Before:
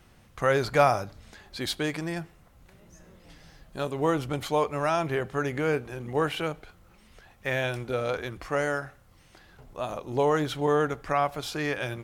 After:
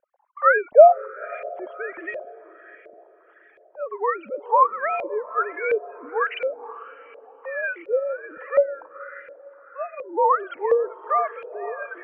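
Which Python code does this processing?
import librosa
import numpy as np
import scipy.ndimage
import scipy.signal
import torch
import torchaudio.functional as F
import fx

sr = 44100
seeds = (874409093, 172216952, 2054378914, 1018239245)

y = fx.sine_speech(x, sr)
y = fx.dereverb_blind(y, sr, rt60_s=0.68)
y = fx.echo_diffused(y, sr, ms=509, feedback_pct=45, wet_db=-14.0)
y = fx.filter_lfo_lowpass(y, sr, shape='saw_up', hz=1.4, low_hz=550.0, high_hz=2400.0, q=4.6)
y = y * 10.0 ** (-1.5 / 20.0)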